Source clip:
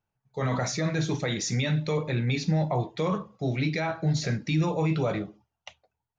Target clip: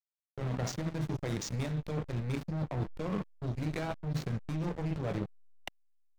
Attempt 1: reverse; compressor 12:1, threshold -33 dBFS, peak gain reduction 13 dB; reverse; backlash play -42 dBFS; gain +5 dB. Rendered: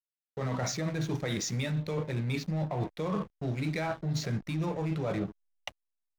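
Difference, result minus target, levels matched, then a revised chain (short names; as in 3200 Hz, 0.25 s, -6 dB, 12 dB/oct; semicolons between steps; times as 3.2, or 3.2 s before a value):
backlash: distortion -12 dB
reverse; compressor 12:1, threshold -33 dBFS, peak gain reduction 13 dB; reverse; backlash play -30.5 dBFS; gain +5 dB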